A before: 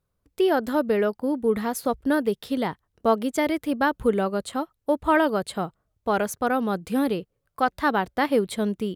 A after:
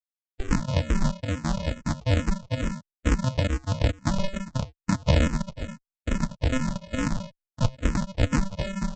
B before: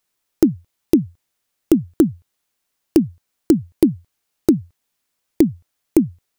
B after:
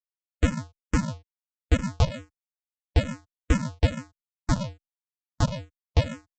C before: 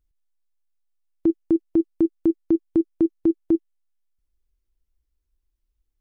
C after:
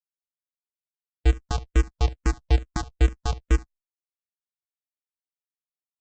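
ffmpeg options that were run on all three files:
-filter_complex "[0:a]afftfilt=real='re*gte(hypot(re,im),0.0251)':imag='im*gte(hypot(re,im),0.0251)':win_size=1024:overlap=0.75,adynamicequalizer=threshold=0.0447:dfrequency=170:dqfactor=1.2:tfrequency=170:tqfactor=1.2:attack=5:release=100:ratio=0.375:range=1.5:mode=boostabove:tftype=bell,alimiter=limit=-8dB:level=0:latency=1:release=366,acrossover=split=180[a][b];[a]adelay=70[c];[c][b]amix=inputs=2:normalize=0,aresample=16000,acrusher=samples=41:mix=1:aa=0.000001,aresample=44100,asplit=2[d][e];[e]afreqshift=-2.3[f];[d][f]amix=inputs=2:normalize=1,volume=2.5dB"

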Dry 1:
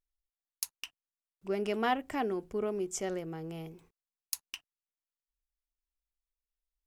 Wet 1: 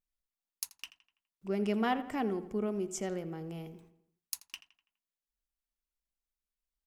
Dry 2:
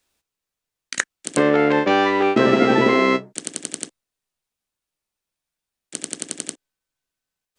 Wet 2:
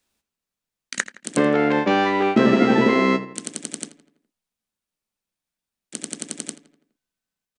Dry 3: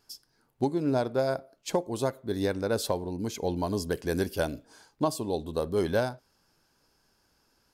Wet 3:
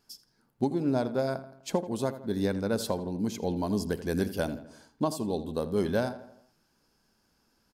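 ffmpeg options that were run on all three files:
-filter_complex "[0:a]equalizer=f=210:w=2.5:g=8,asplit=2[a][b];[b]adelay=83,lowpass=f=3.6k:p=1,volume=-14dB,asplit=2[c][d];[d]adelay=83,lowpass=f=3.6k:p=1,volume=0.52,asplit=2[e][f];[f]adelay=83,lowpass=f=3.6k:p=1,volume=0.52,asplit=2[g][h];[h]adelay=83,lowpass=f=3.6k:p=1,volume=0.52,asplit=2[i][j];[j]adelay=83,lowpass=f=3.6k:p=1,volume=0.52[k];[c][e][g][i][k]amix=inputs=5:normalize=0[l];[a][l]amix=inputs=2:normalize=0,volume=-2.5dB"

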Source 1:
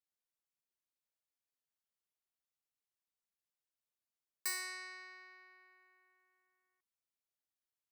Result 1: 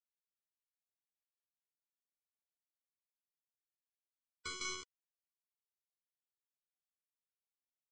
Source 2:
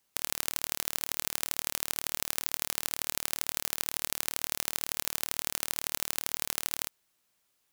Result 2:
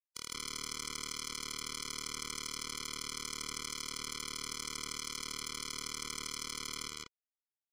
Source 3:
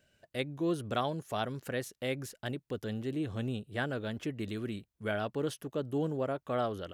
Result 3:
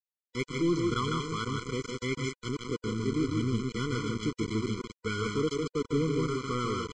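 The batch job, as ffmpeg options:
-af "aecho=1:1:154.5|192.4:0.631|0.282,aresample=16000,aeval=exprs='val(0)*gte(abs(val(0)),0.0168)':c=same,aresample=44100,aeval=exprs='(tanh(15.8*val(0)+0.15)-tanh(0.15))/15.8':c=same,afftfilt=real='re*eq(mod(floor(b*sr/1024/490),2),0)':imag='im*eq(mod(floor(b*sr/1024/490),2),0)':win_size=1024:overlap=0.75,volume=6dB"

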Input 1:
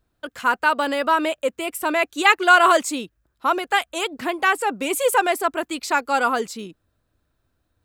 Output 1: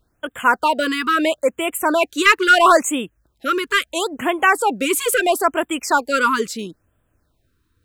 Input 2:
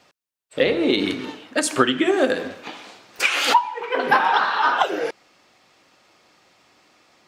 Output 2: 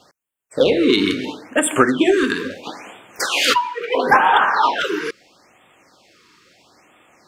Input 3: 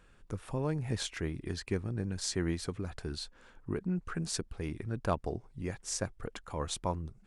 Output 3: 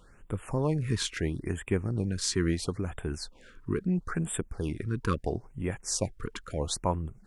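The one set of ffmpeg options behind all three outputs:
-filter_complex "[0:a]asplit=2[a][b];[b]acontrast=82,volume=2dB[c];[a][c]amix=inputs=2:normalize=0,afftfilt=real='re*(1-between(b*sr/1024,630*pow(5200/630,0.5+0.5*sin(2*PI*0.75*pts/sr))/1.41,630*pow(5200/630,0.5+0.5*sin(2*PI*0.75*pts/sr))*1.41))':imag='im*(1-between(b*sr/1024,630*pow(5200/630,0.5+0.5*sin(2*PI*0.75*pts/sr))/1.41,630*pow(5200/630,0.5+0.5*sin(2*PI*0.75*pts/sr))*1.41))':win_size=1024:overlap=0.75,volume=-6.5dB"

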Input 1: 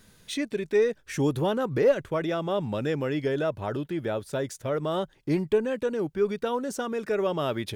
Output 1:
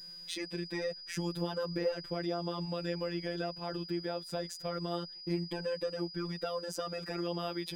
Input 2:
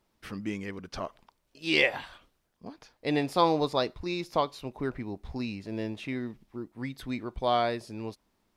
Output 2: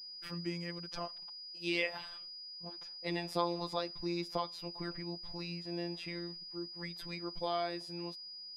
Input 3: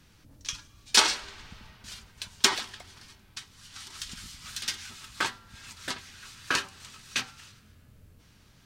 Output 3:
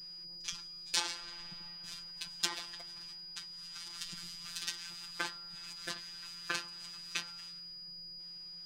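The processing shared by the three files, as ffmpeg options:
-af "afftfilt=real='hypot(re,im)*cos(PI*b)':imag='0':win_size=1024:overlap=0.75,acompressor=threshold=-32dB:ratio=2,aeval=exprs='val(0)+0.00631*sin(2*PI*4900*n/s)':c=same,volume=-1.5dB"

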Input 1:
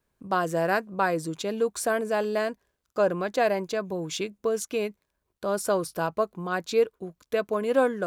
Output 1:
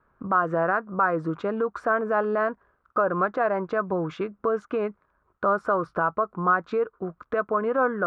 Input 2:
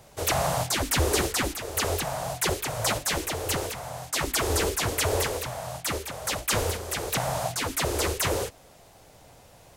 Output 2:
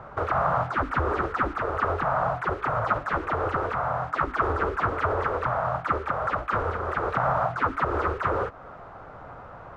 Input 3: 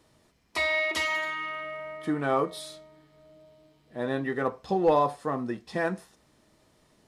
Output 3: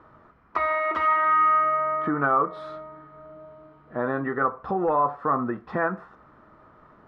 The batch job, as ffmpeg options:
-filter_complex "[0:a]asplit=2[a][b];[b]acompressor=threshold=-36dB:ratio=6,volume=3dB[c];[a][c]amix=inputs=2:normalize=0,alimiter=limit=-18dB:level=0:latency=1:release=150,lowpass=f=1.3k:t=q:w=5.2"

